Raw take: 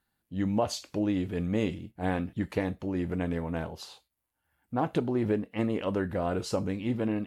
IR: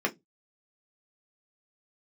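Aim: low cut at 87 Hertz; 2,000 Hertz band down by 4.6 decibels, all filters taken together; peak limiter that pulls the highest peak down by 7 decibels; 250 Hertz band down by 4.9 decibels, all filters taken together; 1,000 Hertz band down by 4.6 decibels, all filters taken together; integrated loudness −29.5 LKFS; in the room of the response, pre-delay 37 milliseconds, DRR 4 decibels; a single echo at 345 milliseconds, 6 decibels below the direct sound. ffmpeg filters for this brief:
-filter_complex "[0:a]highpass=87,equalizer=frequency=250:width_type=o:gain=-6,equalizer=frequency=1000:width_type=o:gain=-5.5,equalizer=frequency=2000:width_type=o:gain=-4,alimiter=level_in=1dB:limit=-24dB:level=0:latency=1,volume=-1dB,aecho=1:1:345:0.501,asplit=2[link_01][link_02];[1:a]atrim=start_sample=2205,adelay=37[link_03];[link_02][link_03]afir=irnorm=-1:irlink=0,volume=-13.5dB[link_04];[link_01][link_04]amix=inputs=2:normalize=0,volume=4dB"

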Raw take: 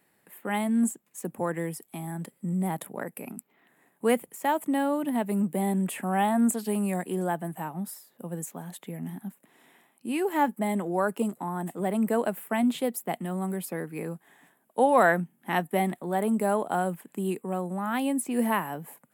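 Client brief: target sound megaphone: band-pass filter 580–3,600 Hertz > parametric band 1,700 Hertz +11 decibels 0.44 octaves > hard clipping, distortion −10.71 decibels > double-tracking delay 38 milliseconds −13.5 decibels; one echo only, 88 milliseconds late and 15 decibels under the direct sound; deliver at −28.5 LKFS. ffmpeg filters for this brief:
ffmpeg -i in.wav -filter_complex "[0:a]highpass=580,lowpass=3600,equalizer=frequency=1700:width_type=o:width=0.44:gain=11,aecho=1:1:88:0.178,asoftclip=type=hard:threshold=-18.5dB,asplit=2[link_01][link_02];[link_02]adelay=38,volume=-13.5dB[link_03];[link_01][link_03]amix=inputs=2:normalize=0,volume=2dB" out.wav

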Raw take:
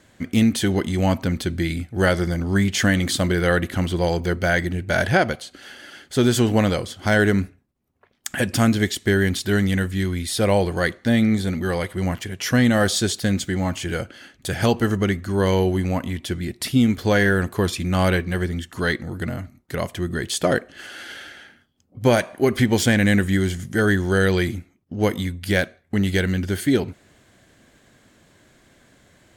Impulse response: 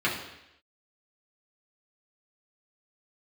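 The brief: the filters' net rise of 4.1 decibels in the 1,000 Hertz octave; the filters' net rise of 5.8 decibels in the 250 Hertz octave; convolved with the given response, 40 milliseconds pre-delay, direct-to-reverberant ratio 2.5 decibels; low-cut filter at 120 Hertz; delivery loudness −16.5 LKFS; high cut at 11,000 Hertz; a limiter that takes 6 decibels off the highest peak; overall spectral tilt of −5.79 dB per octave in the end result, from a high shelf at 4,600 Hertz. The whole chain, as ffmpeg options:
-filter_complex "[0:a]highpass=120,lowpass=11000,equalizer=frequency=250:width_type=o:gain=7.5,equalizer=frequency=1000:width_type=o:gain=5.5,highshelf=frequency=4600:gain=-3.5,alimiter=limit=-5dB:level=0:latency=1,asplit=2[link_01][link_02];[1:a]atrim=start_sample=2205,adelay=40[link_03];[link_02][link_03]afir=irnorm=-1:irlink=0,volume=-15dB[link_04];[link_01][link_04]amix=inputs=2:normalize=0"

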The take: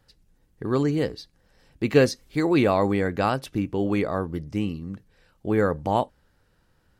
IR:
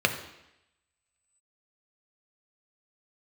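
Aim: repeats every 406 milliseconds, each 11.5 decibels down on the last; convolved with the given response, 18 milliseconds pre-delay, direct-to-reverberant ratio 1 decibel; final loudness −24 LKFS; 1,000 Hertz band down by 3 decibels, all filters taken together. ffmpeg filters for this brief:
-filter_complex "[0:a]equalizer=frequency=1000:width_type=o:gain=-4,aecho=1:1:406|812|1218:0.266|0.0718|0.0194,asplit=2[link_01][link_02];[1:a]atrim=start_sample=2205,adelay=18[link_03];[link_02][link_03]afir=irnorm=-1:irlink=0,volume=-15dB[link_04];[link_01][link_04]amix=inputs=2:normalize=0,volume=-1dB"

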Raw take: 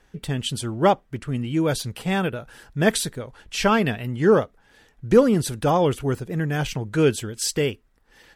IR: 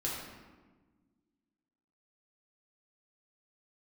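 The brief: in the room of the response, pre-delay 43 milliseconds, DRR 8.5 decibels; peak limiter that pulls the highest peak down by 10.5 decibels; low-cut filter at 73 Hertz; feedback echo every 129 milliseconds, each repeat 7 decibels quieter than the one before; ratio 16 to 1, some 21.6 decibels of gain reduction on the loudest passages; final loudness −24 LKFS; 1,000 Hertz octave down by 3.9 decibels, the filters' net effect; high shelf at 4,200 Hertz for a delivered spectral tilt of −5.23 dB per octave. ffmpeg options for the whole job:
-filter_complex "[0:a]highpass=73,equalizer=frequency=1000:width_type=o:gain=-5,highshelf=frequency=4200:gain=-5.5,acompressor=threshold=-32dB:ratio=16,alimiter=level_in=8.5dB:limit=-24dB:level=0:latency=1,volume=-8.5dB,aecho=1:1:129|258|387|516|645:0.447|0.201|0.0905|0.0407|0.0183,asplit=2[link_01][link_02];[1:a]atrim=start_sample=2205,adelay=43[link_03];[link_02][link_03]afir=irnorm=-1:irlink=0,volume=-12.5dB[link_04];[link_01][link_04]amix=inputs=2:normalize=0,volume=15.5dB"

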